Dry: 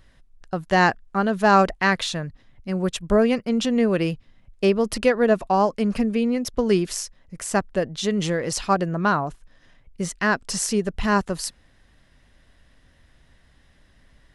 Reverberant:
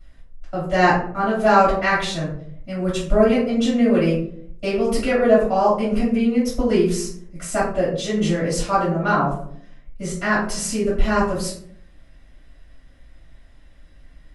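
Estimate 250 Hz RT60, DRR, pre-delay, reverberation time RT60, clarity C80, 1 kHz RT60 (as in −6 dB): 0.85 s, −10.0 dB, 3 ms, 0.65 s, 8.0 dB, 0.50 s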